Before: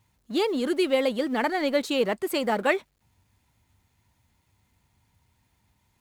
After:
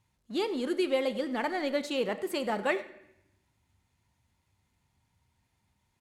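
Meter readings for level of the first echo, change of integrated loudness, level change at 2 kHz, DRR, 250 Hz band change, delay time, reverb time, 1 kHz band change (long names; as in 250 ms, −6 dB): −20.5 dB, −5.5 dB, −5.5 dB, 10.0 dB, −5.5 dB, 97 ms, 0.80 s, −5.5 dB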